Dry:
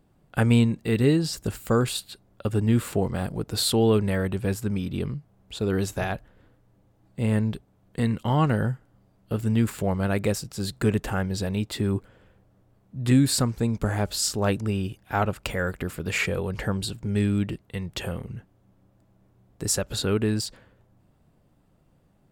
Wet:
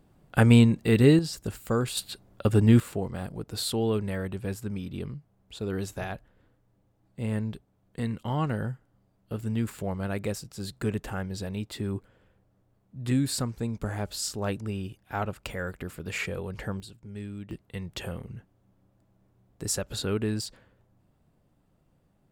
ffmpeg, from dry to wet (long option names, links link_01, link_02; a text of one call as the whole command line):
ffmpeg -i in.wav -af "asetnsamples=nb_out_samples=441:pad=0,asendcmd='1.19 volume volume -4.5dB;1.97 volume volume 3dB;2.8 volume volume -6.5dB;16.8 volume volume -15dB;17.51 volume volume -4.5dB',volume=2dB" out.wav